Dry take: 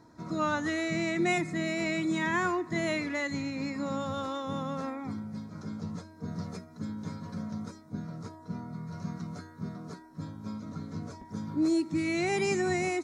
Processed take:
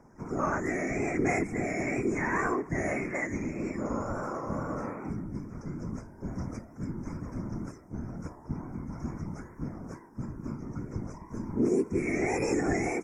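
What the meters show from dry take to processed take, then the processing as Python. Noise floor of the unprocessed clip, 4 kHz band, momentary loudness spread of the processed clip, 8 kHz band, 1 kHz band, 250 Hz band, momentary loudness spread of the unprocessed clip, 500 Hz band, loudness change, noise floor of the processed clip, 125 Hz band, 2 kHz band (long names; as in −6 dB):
−52 dBFS, below −10 dB, 12 LU, −0.5 dB, 0.0 dB, −0.5 dB, 13 LU, +1.5 dB, 0.0 dB, −51 dBFS, +2.0 dB, −1.0 dB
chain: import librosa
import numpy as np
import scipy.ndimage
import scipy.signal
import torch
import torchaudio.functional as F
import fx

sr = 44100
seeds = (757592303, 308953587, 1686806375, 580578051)

y = fx.wow_flutter(x, sr, seeds[0], rate_hz=2.1, depth_cents=73.0)
y = scipy.signal.sosfilt(scipy.signal.ellip(3, 1.0, 40, [2300.0, 5400.0], 'bandstop', fs=sr, output='sos'), y)
y = fx.peak_eq(y, sr, hz=80.0, db=6.0, octaves=1.1)
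y = fx.whisperise(y, sr, seeds[1])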